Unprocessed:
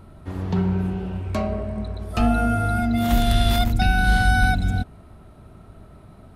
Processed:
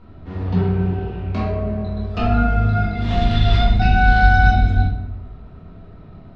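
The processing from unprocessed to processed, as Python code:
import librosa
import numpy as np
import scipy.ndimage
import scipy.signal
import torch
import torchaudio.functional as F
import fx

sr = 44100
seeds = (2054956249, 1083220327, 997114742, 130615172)

y = scipy.signal.sosfilt(scipy.signal.butter(4, 4800.0, 'lowpass', fs=sr, output='sos'), x)
y = fx.room_shoebox(y, sr, seeds[0], volume_m3=220.0, walls='mixed', distance_m=1.8)
y = y * librosa.db_to_amplitude(-4.0)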